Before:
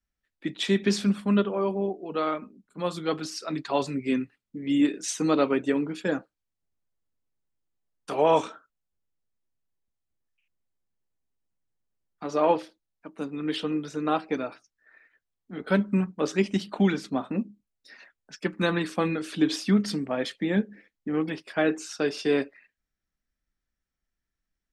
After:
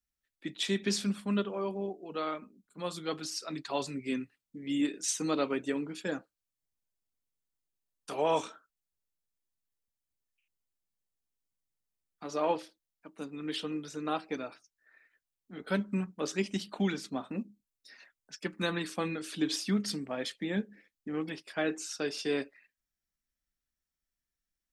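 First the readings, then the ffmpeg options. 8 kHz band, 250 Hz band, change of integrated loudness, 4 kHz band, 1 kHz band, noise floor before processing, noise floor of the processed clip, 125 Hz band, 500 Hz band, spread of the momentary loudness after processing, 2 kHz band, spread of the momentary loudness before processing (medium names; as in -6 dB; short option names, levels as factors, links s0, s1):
0.0 dB, -8.0 dB, -7.0 dB, -2.5 dB, -7.5 dB, -85 dBFS, under -85 dBFS, -8.0 dB, -8.0 dB, 13 LU, -6.0 dB, 12 LU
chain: -af "highshelf=f=3600:g=10,volume=0.398"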